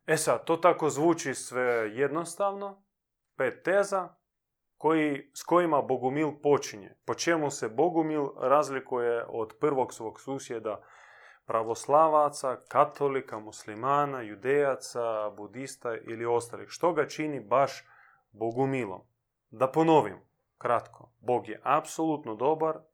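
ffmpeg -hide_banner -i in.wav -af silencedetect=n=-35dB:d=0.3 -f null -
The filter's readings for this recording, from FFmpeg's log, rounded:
silence_start: 2.70
silence_end: 3.40 | silence_duration: 0.70
silence_start: 4.06
silence_end: 4.84 | silence_duration: 0.78
silence_start: 10.75
silence_end: 11.50 | silence_duration: 0.75
silence_start: 17.78
silence_end: 18.41 | silence_duration: 0.63
silence_start: 18.97
silence_end: 19.60 | silence_duration: 0.63
silence_start: 20.15
silence_end: 20.61 | silence_duration: 0.46
silence_start: 20.86
silence_end: 21.28 | silence_duration: 0.42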